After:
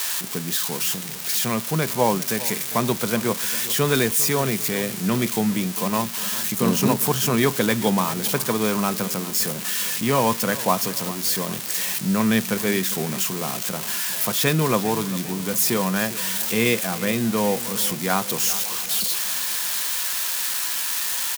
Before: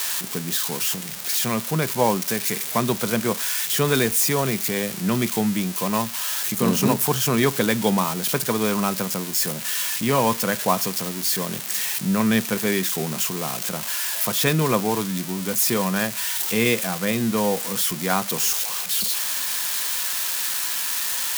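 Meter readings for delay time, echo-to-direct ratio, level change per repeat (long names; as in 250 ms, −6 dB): 400 ms, −15.0 dB, −5.5 dB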